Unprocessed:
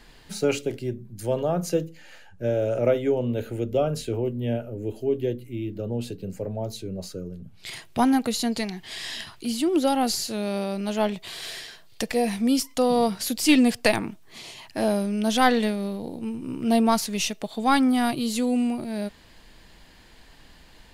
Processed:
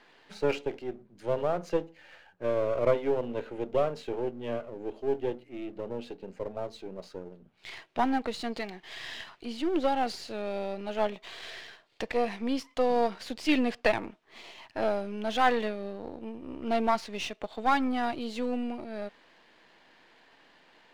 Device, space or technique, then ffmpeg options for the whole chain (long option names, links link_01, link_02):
crystal radio: -af "highpass=350,lowpass=2900,aeval=exprs='if(lt(val(0),0),0.447*val(0),val(0))':channel_layout=same"